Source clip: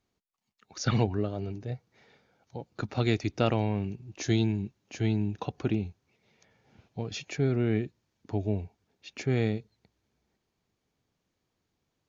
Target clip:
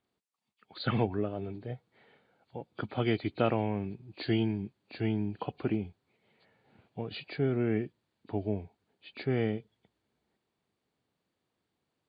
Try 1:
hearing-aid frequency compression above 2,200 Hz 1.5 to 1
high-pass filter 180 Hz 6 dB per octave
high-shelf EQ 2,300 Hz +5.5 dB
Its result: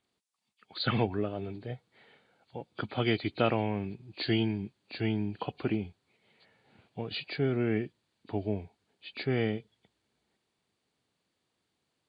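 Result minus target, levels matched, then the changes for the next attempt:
4,000 Hz band +5.0 dB
change: high-shelf EQ 2,300 Hz −3 dB

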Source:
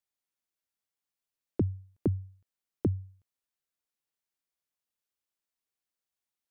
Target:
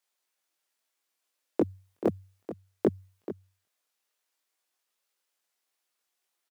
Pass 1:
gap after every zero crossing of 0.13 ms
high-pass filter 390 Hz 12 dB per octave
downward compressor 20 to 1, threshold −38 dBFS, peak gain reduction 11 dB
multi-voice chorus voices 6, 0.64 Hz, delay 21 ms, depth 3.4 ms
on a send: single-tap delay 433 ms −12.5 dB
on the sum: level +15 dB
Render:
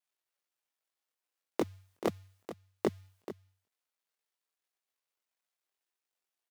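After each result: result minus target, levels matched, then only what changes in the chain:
gap after every zero crossing: distortion +21 dB; downward compressor: peak gain reduction +7.5 dB
change: gap after every zero crossing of 0.026 ms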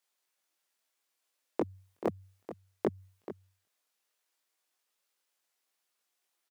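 downward compressor: peak gain reduction +7.5 dB
change: downward compressor 20 to 1, threshold −30 dBFS, peak gain reduction 3.5 dB

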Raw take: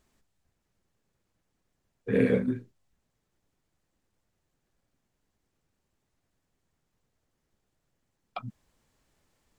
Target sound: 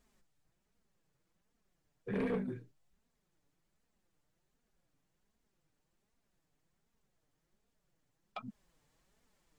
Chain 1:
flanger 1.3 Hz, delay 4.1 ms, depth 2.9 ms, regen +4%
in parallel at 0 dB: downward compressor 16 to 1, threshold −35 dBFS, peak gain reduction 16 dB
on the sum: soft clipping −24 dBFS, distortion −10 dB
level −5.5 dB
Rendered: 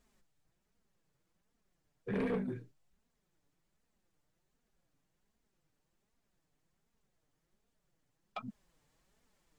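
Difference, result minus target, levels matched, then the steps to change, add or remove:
downward compressor: peak gain reduction −7.5 dB
change: downward compressor 16 to 1, threshold −43 dBFS, peak gain reduction 23.5 dB

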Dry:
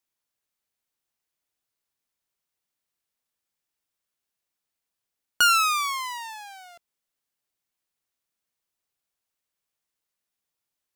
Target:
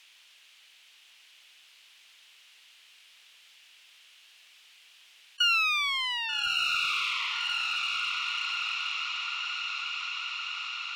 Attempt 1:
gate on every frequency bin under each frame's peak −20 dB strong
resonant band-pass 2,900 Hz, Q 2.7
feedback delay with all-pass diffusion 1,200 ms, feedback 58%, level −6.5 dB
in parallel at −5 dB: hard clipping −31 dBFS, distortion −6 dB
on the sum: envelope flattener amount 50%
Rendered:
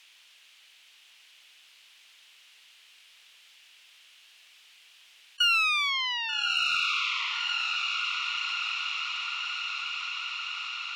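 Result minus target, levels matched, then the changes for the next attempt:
hard clipping: distortion −5 dB
change: hard clipping −39.5 dBFS, distortion −1 dB

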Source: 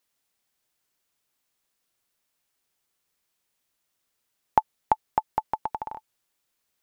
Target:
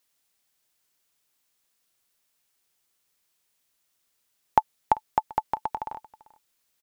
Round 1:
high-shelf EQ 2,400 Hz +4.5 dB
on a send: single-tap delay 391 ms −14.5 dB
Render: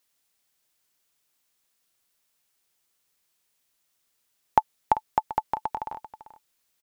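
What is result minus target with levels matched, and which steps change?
echo-to-direct +7.5 dB
change: single-tap delay 391 ms −22 dB

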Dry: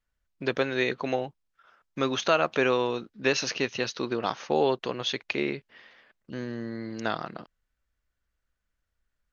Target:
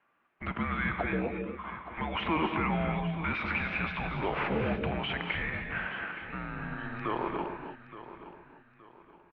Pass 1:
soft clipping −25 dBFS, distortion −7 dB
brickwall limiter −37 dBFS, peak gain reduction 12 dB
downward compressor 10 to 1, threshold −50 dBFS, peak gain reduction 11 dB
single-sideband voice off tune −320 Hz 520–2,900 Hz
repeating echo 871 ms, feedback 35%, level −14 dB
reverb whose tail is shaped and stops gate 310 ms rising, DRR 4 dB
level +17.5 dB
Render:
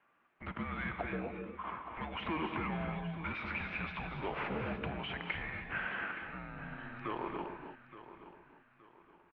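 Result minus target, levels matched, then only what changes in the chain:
downward compressor: peak gain reduction +11 dB; soft clipping: distortion +9 dB
change: soft clipping −15.5 dBFS, distortion −16 dB
remove: downward compressor 10 to 1, threshold −50 dBFS, peak gain reduction 11 dB

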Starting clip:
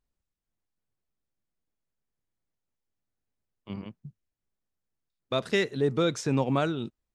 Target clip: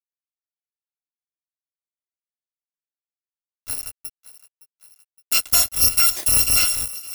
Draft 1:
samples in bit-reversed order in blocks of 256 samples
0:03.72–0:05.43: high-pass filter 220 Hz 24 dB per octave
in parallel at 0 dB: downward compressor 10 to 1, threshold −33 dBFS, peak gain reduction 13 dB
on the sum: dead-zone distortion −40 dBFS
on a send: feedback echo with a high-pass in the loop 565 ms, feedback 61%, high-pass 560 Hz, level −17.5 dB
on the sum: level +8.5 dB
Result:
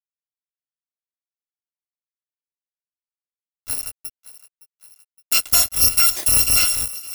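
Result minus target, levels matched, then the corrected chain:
downward compressor: peak gain reduction −6 dB
samples in bit-reversed order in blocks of 256 samples
0:03.72–0:05.43: high-pass filter 220 Hz 24 dB per octave
in parallel at 0 dB: downward compressor 10 to 1, threshold −39.5 dBFS, peak gain reduction 19 dB
on the sum: dead-zone distortion −40 dBFS
on a send: feedback echo with a high-pass in the loop 565 ms, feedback 61%, high-pass 560 Hz, level −17.5 dB
on the sum: level +8.5 dB

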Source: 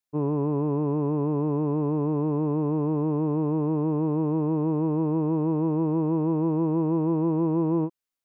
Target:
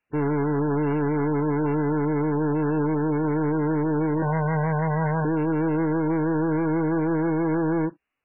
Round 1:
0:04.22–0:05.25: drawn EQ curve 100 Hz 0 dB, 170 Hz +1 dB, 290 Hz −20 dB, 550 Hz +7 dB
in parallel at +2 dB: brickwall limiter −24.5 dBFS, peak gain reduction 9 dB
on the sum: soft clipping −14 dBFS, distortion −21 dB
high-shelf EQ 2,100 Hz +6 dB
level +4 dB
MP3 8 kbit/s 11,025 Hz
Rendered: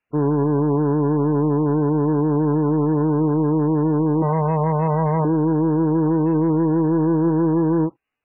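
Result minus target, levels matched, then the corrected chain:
soft clipping: distortion −12 dB
0:04.22–0:05.25: drawn EQ curve 100 Hz 0 dB, 170 Hz +1 dB, 290 Hz −20 dB, 550 Hz +7 dB
in parallel at +2 dB: brickwall limiter −24.5 dBFS, peak gain reduction 9 dB
on the sum: soft clipping −24.5 dBFS, distortion −9 dB
high-shelf EQ 2,100 Hz +6 dB
level +4 dB
MP3 8 kbit/s 11,025 Hz

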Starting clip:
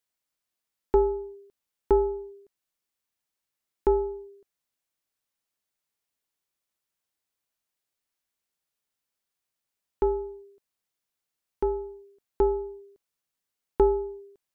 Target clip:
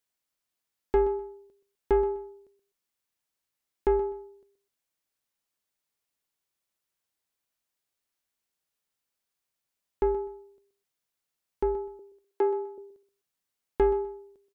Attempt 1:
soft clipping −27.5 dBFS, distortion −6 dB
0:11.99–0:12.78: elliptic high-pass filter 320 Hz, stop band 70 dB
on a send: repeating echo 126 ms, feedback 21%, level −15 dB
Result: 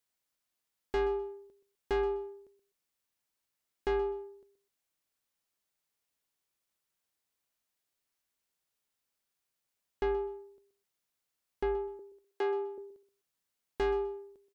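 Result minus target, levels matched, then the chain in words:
soft clipping: distortion +11 dB
soft clipping −16 dBFS, distortion −18 dB
0:11.99–0:12.78: elliptic high-pass filter 320 Hz, stop band 70 dB
on a send: repeating echo 126 ms, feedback 21%, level −15 dB

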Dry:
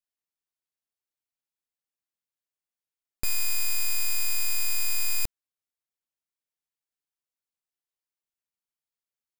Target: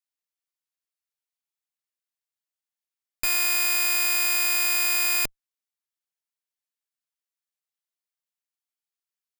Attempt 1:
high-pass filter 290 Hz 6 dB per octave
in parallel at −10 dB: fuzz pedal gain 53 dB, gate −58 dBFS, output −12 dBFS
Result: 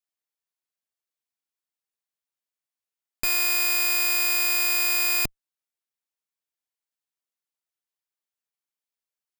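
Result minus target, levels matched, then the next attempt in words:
250 Hz band +2.5 dB
high-pass filter 1,000 Hz 6 dB per octave
in parallel at −10 dB: fuzz pedal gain 53 dB, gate −58 dBFS, output −12 dBFS

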